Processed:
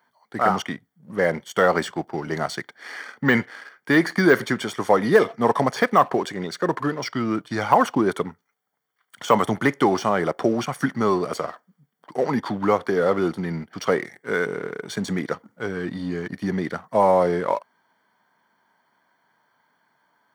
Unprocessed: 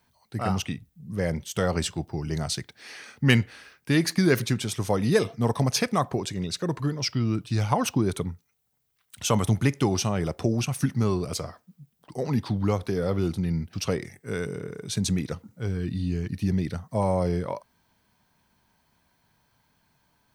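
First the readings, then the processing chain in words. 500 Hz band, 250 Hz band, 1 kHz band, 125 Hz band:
+7.5 dB, +2.5 dB, +10.5 dB, -6.0 dB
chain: polynomial smoothing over 41 samples; tilt +3.5 dB/oct; sample leveller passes 1; HPF 200 Hz 12 dB/oct; de-esser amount 90%; gain +8 dB

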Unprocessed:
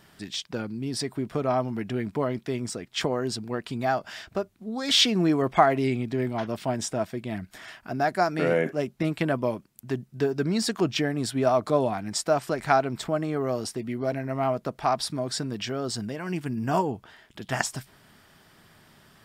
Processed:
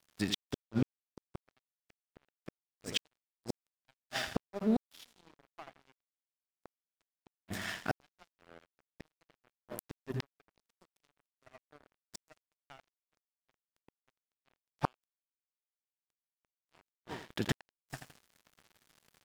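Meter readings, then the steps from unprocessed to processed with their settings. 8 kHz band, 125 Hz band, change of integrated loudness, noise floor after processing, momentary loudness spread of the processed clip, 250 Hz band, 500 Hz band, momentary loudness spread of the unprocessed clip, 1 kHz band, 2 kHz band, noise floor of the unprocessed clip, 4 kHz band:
-16.5 dB, -14.0 dB, -11.5 dB, under -85 dBFS, 21 LU, -13.0 dB, -20.5 dB, 11 LU, -20.0 dB, -13.0 dB, -58 dBFS, -14.5 dB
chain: feedback echo 83 ms, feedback 49%, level -7.5 dB; flipped gate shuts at -23 dBFS, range -32 dB; crossover distortion -49 dBFS; gain +6 dB

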